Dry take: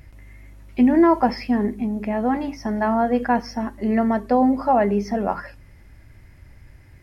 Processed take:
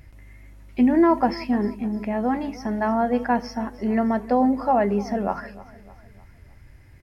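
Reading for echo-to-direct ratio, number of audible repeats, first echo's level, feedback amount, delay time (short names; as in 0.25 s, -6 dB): -18.0 dB, 3, -19.0 dB, 47%, 0.304 s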